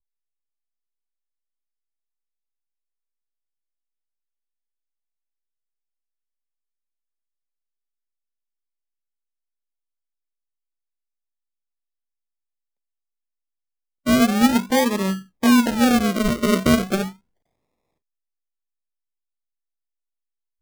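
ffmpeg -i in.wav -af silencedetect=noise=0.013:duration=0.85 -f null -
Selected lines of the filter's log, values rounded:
silence_start: 0.00
silence_end: 14.06 | silence_duration: 14.06
silence_start: 17.12
silence_end: 20.61 | silence_duration: 3.50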